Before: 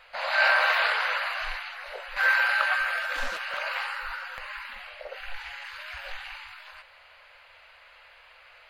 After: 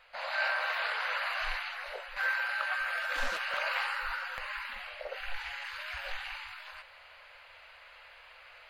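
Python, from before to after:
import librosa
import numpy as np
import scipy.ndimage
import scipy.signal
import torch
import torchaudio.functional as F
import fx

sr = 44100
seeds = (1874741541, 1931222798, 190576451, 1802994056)

y = fx.rider(x, sr, range_db=5, speed_s=0.5)
y = F.gain(torch.from_numpy(y), -5.5).numpy()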